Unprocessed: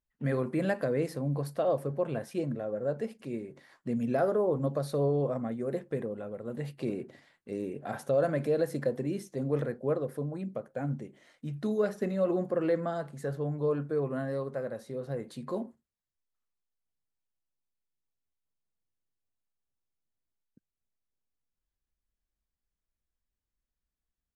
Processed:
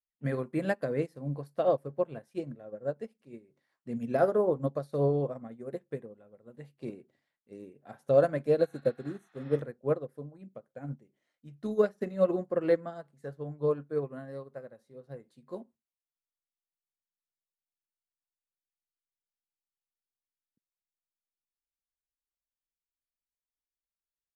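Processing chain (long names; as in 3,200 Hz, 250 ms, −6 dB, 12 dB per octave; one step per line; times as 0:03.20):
healed spectral selection 0:08.64–0:09.55, 680–5,700 Hz both
expander for the loud parts 2.5 to 1, over −40 dBFS
level +6 dB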